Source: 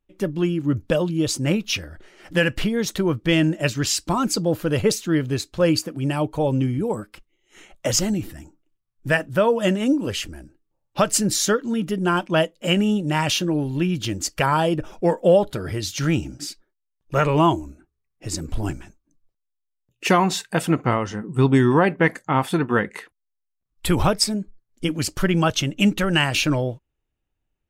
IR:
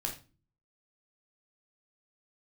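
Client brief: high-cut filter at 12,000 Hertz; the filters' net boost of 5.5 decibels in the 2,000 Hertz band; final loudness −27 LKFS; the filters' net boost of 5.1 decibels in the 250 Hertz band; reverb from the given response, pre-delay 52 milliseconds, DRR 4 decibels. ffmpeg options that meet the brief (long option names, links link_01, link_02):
-filter_complex "[0:a]lowpass=12000,equalizer=frequency=250:width_type=o:gain=7,equalizer=frequency=2000:width_type=o:gain=7,asplit=2[link_01][link_02];[1:a]atrim=start_sample=2205,adelay=52[link_03];[link_02][link_03]afir=irnorm=-1:irlink=0,volume=-6dB[link_04];[link_01][link_04]amix=inputs=2:normalize=0,volume=-10.5dB"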